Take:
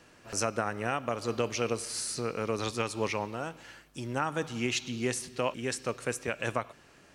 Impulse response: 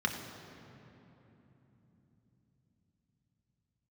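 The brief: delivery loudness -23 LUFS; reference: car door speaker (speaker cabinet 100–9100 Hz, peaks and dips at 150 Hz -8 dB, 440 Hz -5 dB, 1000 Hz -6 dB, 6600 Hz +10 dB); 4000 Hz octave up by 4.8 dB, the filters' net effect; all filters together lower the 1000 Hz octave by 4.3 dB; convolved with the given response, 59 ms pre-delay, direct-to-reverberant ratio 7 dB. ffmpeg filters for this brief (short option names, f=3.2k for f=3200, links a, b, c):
-filter_complex "[0:a]equalizer=f=1k:t=o:g=-3.5,equalizer=f=4k:t=o:g=5.5,asplit=2[a][b];[1:a]atrim=start_sample=2205,adelay=59[c];[b][c]afir=irnorm=-1:irlink=0,volume=-14.5dB[d];[a][d]amix=inputs=2:normalize=0,highpass=100,equalizer=f=150:t=q:w=4:g=-8,equalizer=f=440:t=q:w=4:g=-5,equalizer=f=1k:t=q:w=4:g=-6,equalizer=f=6.6k:t=q:w=4:g=10,lowpass=f=9.1k:w=0.5412,lowpass=f=9.1k:w=1.3066,volume=8.5dB"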